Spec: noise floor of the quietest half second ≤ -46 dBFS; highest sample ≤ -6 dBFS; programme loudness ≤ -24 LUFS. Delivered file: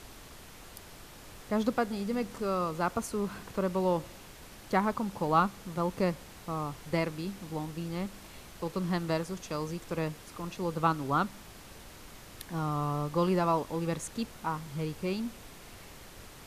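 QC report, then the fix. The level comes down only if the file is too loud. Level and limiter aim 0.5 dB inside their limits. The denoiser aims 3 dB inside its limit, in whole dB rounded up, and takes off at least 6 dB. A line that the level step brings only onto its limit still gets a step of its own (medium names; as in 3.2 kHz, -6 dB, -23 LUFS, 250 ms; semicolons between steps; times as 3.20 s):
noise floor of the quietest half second -49 dBFS: pass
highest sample -12.0 dBFS: pass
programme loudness -32.5 LUFS: pass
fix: none needed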